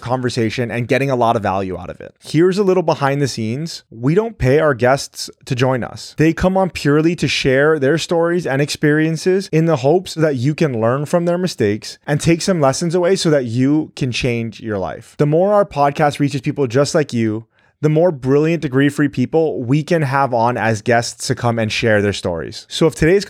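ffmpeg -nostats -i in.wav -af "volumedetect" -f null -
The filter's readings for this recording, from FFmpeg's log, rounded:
mean_volume: -16.0 dB
max_volume: -2.1 dB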